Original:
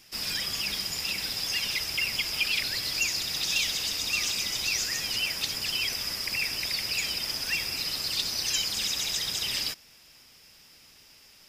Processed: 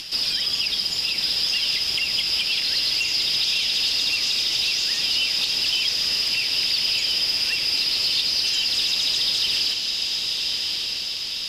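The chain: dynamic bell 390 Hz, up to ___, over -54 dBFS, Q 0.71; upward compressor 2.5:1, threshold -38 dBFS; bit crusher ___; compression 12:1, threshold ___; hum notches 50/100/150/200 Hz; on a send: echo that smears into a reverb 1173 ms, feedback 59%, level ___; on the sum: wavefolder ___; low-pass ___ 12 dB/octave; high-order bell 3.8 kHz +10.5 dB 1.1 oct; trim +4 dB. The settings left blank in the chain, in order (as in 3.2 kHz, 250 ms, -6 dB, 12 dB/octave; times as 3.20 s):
+3 dB, 12-bit, -32 dBFS, -4 dB, -28 dBFS, 12 kHz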